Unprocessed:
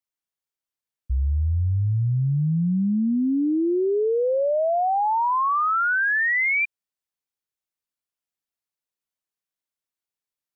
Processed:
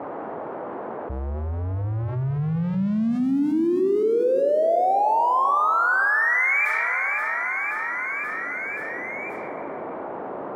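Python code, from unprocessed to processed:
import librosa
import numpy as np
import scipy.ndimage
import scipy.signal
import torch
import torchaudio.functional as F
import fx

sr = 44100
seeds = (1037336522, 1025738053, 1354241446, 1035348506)

y = x + 0.5 * 10.0 ** (-38.5 / 20.0) * np.sign(x)
y = fx.env_lowpass(y, sr, base_hz=1200.0, full_db=-20.5)
y = scipy.signal.sosfilt(scipy.signal.butter(2, 340.0, 'highpass', fs=sr, output='sos'), y)
y = fx.env_lowpass(y, sr, base_hz=680.0, full_db=-24.0)
y = fx.high_shelf(y, sr, hz=2000.0, db=-8.5)
y = fx.hum_notches(y, sr, base_hz=60, count=9)
y = fx.echo_feedback(y, sr, ms=529, feedback_pct=51, wet_db=-14)
y = fx.rev_plate(y, sr, seeds[0], rt60_s=2.9, hf_ratio=0.5, predelay_ms=0, drr_db=7.5)
y = fx.env_flatten(y, sr, amount_pct=70)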